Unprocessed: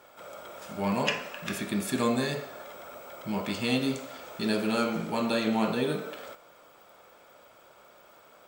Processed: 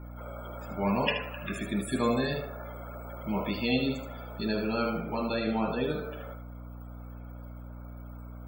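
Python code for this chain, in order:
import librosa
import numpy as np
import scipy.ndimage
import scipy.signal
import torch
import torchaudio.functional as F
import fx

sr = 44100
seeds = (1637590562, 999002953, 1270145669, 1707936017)

p1 = fx.rider(x, sr, range_db=4, speed_s=2.0)
p2 = fx.add_hum(p1, sr, base_hz=60, snr_db=10)
p3 = fx.spec_topn(p2, sr, count=64)
p4 = p3 + fx.echo_thinned(p3, sr, ms=76, feedback_pct=16, hz=420.0, wet_db=-7, dry=0)
p5 = fx.end_taper(p4, sr, db_per_s=410.0)
y = F.gain(torch.from_numpy(p5), -2.0).numpy()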